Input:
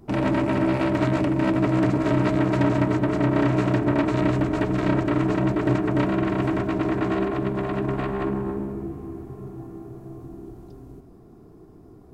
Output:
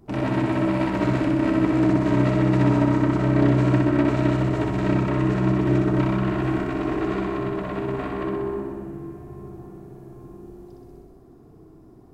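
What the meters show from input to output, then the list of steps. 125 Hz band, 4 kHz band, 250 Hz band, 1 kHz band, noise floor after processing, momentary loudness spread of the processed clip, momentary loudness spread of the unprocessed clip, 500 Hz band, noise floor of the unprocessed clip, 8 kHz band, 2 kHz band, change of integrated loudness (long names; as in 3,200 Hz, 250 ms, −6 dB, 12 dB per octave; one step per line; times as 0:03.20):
+2.5 dB, −0.5 dB, +1.0 dB, −0.5 dB, −49 dBFS, 15 LU, 17 LU, −0.5 dB, −48 dBFS, can't be measured, −0.5 dB, +1.0 dB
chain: flutter between parallel walls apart 10.7 metres, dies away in 1.2 s
level −3.5 dB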